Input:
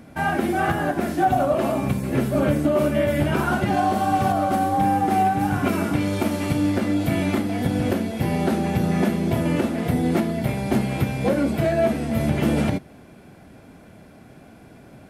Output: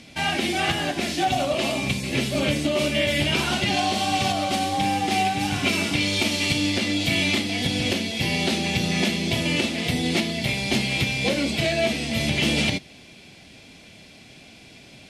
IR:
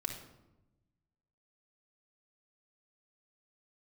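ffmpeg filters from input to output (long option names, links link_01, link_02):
-af "aexciter=amount=9.3:drive=5.7:freq=2200,lowpass=4600,volume=-4dB"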